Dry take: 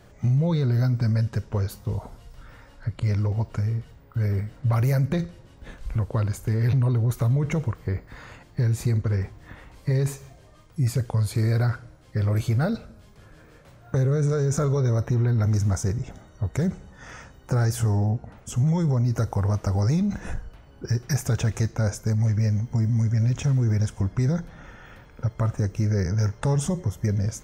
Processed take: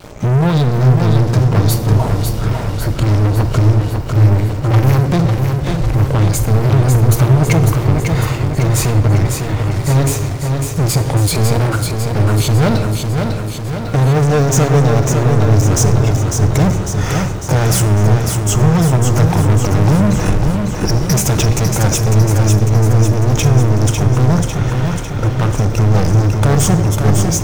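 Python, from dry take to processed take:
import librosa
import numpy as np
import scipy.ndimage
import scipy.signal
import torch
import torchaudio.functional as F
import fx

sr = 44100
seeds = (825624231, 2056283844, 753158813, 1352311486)

p1 = fx.peak_eq(x, sr, hz=1700.0, db=-9.0, octaves=0.36)
p2 = fx.rider(p1, sr, range_db=10, speed_s=2.0)
p3 = p1 + (p2 * librosa.db_to_amplitude(-1.5))
p4 = fx.vibrato(p3, sr, rate_hz=0.62, depth_cents=6.1)
p5 = fx.leveller(p4, sr, passes=5)
p6 = p5 + fx.echo_feedback(p5, sr, ms=550, feedback_pct=59, wet_db=-5, dry=0)
p7 = fx.room_shoebox(p6, sr, seeds[0], volume_m3=1700.0, walls='mixed', distance_m=0.49)
y = p7 * librosa.db_to_amplitude(-3.0)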